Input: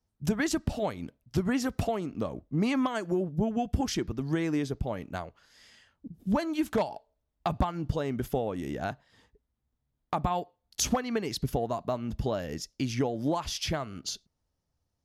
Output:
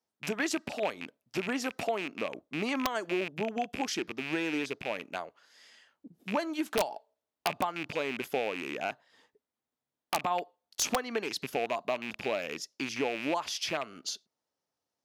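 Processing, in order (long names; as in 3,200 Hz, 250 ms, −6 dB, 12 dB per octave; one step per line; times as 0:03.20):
loose part that buzzes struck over −35 dBFS, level −25 dBFS
high-pass filter 350 Hz 12 dB per octave
high-shelf EQ 8,600 Hz −4 dB
wrap-around overflow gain 17.5 dB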